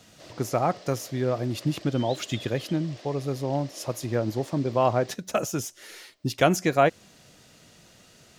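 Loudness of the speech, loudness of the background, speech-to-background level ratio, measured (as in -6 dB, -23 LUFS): -27.0 LUFS, -45.5 LUFS, 18.5 dB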